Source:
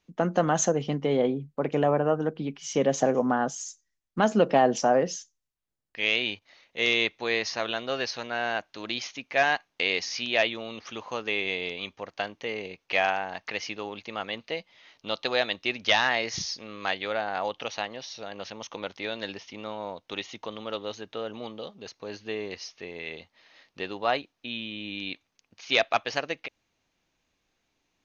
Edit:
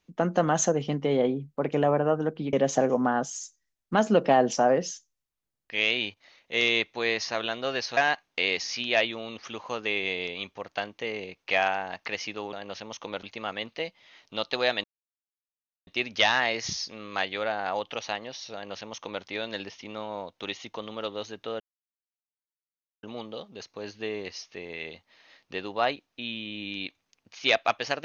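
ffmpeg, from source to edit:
ffmpeg -i in.wav -filter_complex "[0:a]asplit=7[link_01][link_02][link_03][link_04][link_05][link_06][link_07];[link_01]atrim=end=2.532[link_08];[link_02]atrim=start=2.778:end=8.222[link_09];[link_03]atrim=start=9.388:end=13.952[link_10];[link_04]atrim=start=18.228:end=18.932[link_11];[link_05]atrim=start=13.948:end=15.56,asetpts=PTS-STARTPTS,afade=type=out:start_time=1.608:duration=0.004:curve=hsin,apad=pad_dur=1.03[link_12];[link_06]atrim=start=15.56:end=21.29,asetpts=PTS-STARTPTS,afade=type=in:duration=0.004:curve=hsin,afade=type=out:start_time=5.726:duration=0.004:curve=hsin,apad=pad_dur=1.43[link_13];[link_07]atrim=start=21.29,asetpts=PTS-STARTPTS,afade=type=in:duration=0.004:curve=hsin[link_14];[link_08][link_09]acrossfade=duration=0.004:curve1=hsin:curve2=hsin[link_15];[link_15][link_10]acrossfade=duration=0.004:curve1=hsin:curve2=hsin[link_16];[link_16][link_11]acrossfade=duration=0.004:curve1=hsin:curve2=hsin[link_17];[link_12][link_13][link_14]concat=n=3:v=0:a=1[link_18];[link_17][link_18]acrossfade=duration=0.004:curve1=hsin:curve2=hsin" out.wav

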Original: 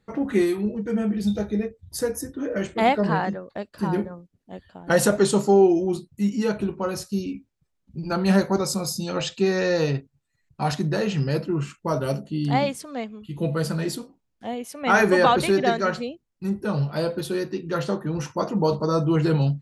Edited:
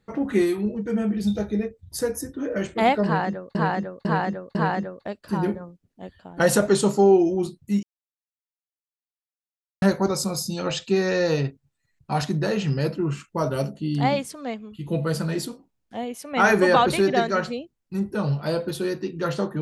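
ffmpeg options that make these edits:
ffmpeg -i in.wav -filter_complex "[0:a]asplit=6[link_01][link_02][link_03][link_04][link_05][link_06];[link_01]atrim=end=3.552[link_07];[link_02]atrim=start=3.048:end=3.552[link_08];[link_03]atrim=start=3.048:end=3.552[link_09];[link_04]atrim=start=3.048:end=6.33,asetpts=PTS-STARTPTS,afade=type=out:start_time=3.278:duration=0.004:curve=hsin[link_10];[link_05]atrim=start=6.33:end=8.32,asetpts=PTS-STARTPTS,volume=0[link_11];[link_06]atrim=start=8.32,asetpts=PTS-STARTPTS,afade=type=in:duration=0.004:curve=hsin[link_12];[link_07][link_08]acrossfade=duration=0.004:curve1=hsin:curve2=hsin[link_13];[link_13][link_09]acrossfade=duration=0.004:curve1=hsin:curve2=hsin[link_14];[link_10][link_11][link_12]concat=n=3:v=0:a=1[link_15];[link_14][link_15]acrossfade=duration=0.004:curve1=hsin:curve2=hsin" out.wav

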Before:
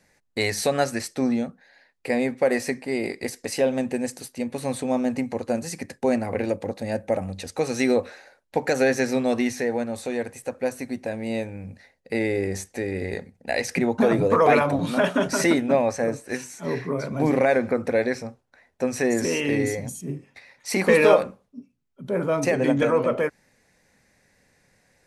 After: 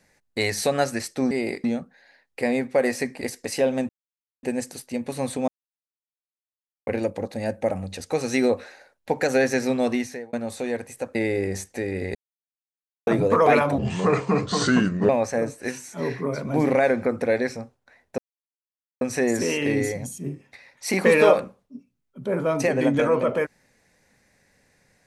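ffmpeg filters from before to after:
ffmpeg -i in.wav -filter_complex "[0:a]asplit=14[link_01][link_02][link_03][link_04][link_05][link_06][link_07][link_08][link_09][link_10][link_11][link_12][link_13][link_14];[link_01]atrim=end=1.312[link_15];[link_02]atrim=start=2.878:end=3.212[link_16];[link_03]atrim=start=1.308:end=2.882[link_17];[link_04]atrim=start=3.208:end=3.89,asetpts=PTS-STARTPTS,afade=type=out:start_time=0.678:duration=0.004:curve=hsin,apad=pad_dur=0.54[link_18];[link_05]atrim=start=3.89:end=4.94,asetpts=PTS-STARTPTS,afade=type=in:duration=0.004:curve=hsin,afade=type=out:start_time=1.046:duration=0.004:curve=hsin[link_19];[link_06]atrim=start=4.94:end=6.33,asetpts=PTS-STARTPTS,volume=0[link_20];[link_07]atrim=start=6.33:end=9.79,asetpts=PTS-STARTPTS,afade=type=in:duration=0.004:curve=hsin,afade=type=out:start_time=3.04:duration=0.42[link_21];[link_08]atrim=start=9.79:end=10.612,asetpts=PTS-STARTPTS,afade=type=in:duration=0.004:curve=hsin[link_22];[link_09]atrim=start=12.148:end=13.15,asetpts=PTS-STARTPTS,afade=type=out:start_time=0.998:duration=0.004:curve=hsin[link_23];[link_10]atrim=start=13.15:end=14.07,asetpts=PTS-STARTPTS,volume=0[link_24];[link_11]atrim=start=14.07:end=14.784,asetpts=PTS-STARTPTS,afade=type=in:duration=0.004:curve=hsin[link_25];[link_12]atrim=start=14.78:end=15.75,asetpts=PTS-STARTPTS,asetrate=32634,aresample=44100[link_26];[link_13]atrim=start=15.746:end=18.84,asetpts=PTS-STARTPTS,afade=type=out:start_time=3.09:duration=0.004:curve=hsin,apad=pad_dur=0.83[link_27];[link_14]atrim=start=18.84,asetpts=PTS-STARTPTS,afade=type=in:duration=0.004:curve=hsin[link_28];[link_15][link_16]acrossfade=duration=0.004:curve1=hsin:curve2=hsin[link_29];[link_29][link_17]acrossfade=duration=0.004:curve1=hsin:curve2=hsin[link_30];[link_18][link_19][link_20][link_21][link_22]concat=n=5:v=0:a=1[link_31];[link_30][link_31]acrossfade=duration=0.004:curve1=hsin:curve2=hsin[link_32];[link_23][link_24][link_25]concat=n=3:v=0:a=1[link_33];[link_32][link_33]acrossfade=duration=0.004:curve1=hsin:curve2=hsin[link_34];[link_34][link_26]acrossfade=duration=0.004:curve1=hsin:curve2=hsin[link_35];[link_27][link_28]concat=n=2:v=0:a=1[link_36];[link_35][link_36]acrossfade=duration=0.004:curve1=hsin:curve2=hsin" out.wav

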